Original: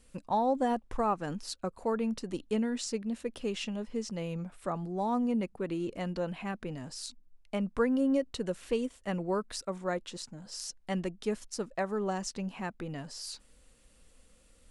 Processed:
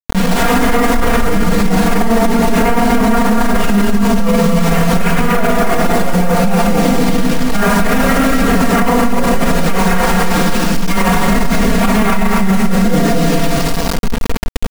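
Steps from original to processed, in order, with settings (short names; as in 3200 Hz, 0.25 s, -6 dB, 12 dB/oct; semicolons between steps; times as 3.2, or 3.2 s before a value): resonator 62 Hz, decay 0.23 s, harmonics all, mix 60%; wrapped overs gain 32.5 dB; rotary speaker horn 6.3 Hz, later 0.9 Hz, at 5.79; reverb RT60 1.0 s, pre-delay 11 ms, DRR -13 dB; dynamic EQ 150 Hz, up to -6 dB, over -41 dBFS, Q 4.9; LPF 1600 Hz 12 dB/oct; bouncing-ball echo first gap 0.24 s, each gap 0.7×, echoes 5; bit-crush 6-bit; comb 4.3 ms, depth 88%; maximiser +17 dB; fast leveller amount 50%; gain -4.5 dB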